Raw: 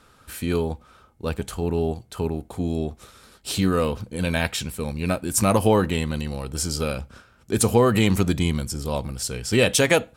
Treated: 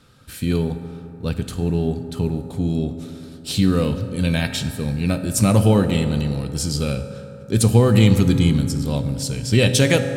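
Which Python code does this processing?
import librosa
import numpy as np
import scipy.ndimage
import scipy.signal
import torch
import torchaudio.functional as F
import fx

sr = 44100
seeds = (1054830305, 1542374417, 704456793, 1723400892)

y = fx.graphic_eq(x, sr, hz=(125, 250, 1000, 4000), db=(11, 3, -4, 5))
y = fx.rev_fdn(y, sr, rt60_s=3.1, lf_ratio=1.0, hf_ratio=0.4, size_ms=11.0, drr_db=7.5)
y = F.gain(torch.from_numpy(y), -1.5).numpy()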